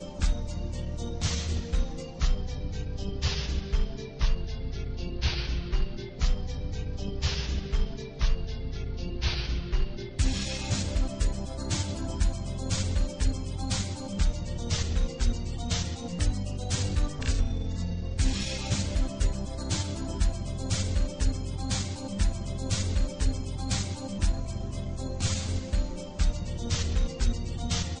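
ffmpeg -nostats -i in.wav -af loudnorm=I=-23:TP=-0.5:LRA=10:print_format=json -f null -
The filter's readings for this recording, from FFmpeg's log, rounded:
"input_i" : "-31.6",
"input_tp" : "-13.0",
"input_lra" : "2.2",
"input_thresh" : "-41.6",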